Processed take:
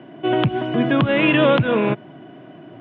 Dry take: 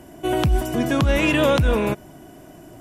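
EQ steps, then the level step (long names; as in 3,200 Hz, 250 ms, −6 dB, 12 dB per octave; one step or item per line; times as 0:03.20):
Chebyshev band-pass filter 120–3,300 Hz, order 4
notch filter 880 Hz, Q 17
+3.5 dB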